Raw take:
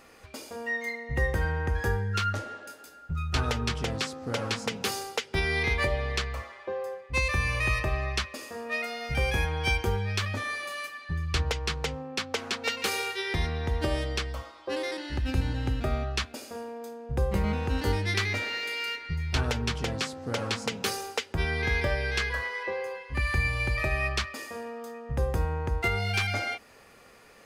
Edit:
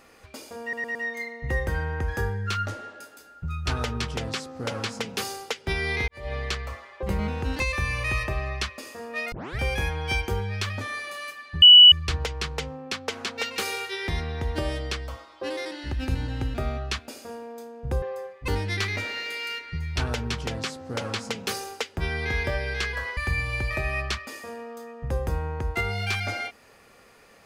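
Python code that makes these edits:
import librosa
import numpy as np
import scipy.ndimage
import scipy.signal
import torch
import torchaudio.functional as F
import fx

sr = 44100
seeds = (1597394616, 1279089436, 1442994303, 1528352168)

y = fx.edit(x, sr, fx.stutter(start_s=0.62, slice_s=0.11, count=4),
    fx.fade_in_span(start_s=5.75, length_s=0.25, curve='qua'),
    fx.swap(start_s=6.7, length_s=0.46, other_s=17.28, other_length_s=0.57),
    fx.tape_start(start_s=8.88, length_s=0.27),
    fx.insert_tone(at_s=11.18, length_s=0.3, hz=2950.0, db=-6.5),
    fx.cut(start_s=22.54, length_s=0.7), tone=tone)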